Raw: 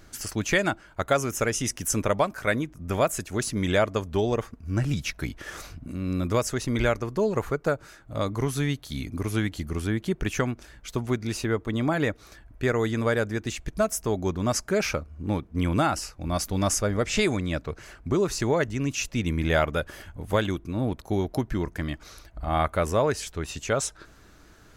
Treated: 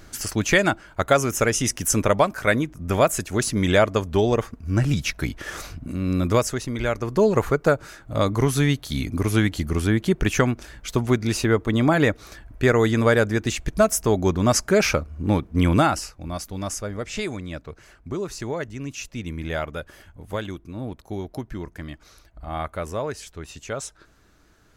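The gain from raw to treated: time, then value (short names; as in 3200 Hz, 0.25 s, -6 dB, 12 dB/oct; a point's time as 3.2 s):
6.37 s +5 dB
6.78 s -3 dB
7.17 s +6.5 dB
15.73 s +6.5 dB
16.44 s -5 dB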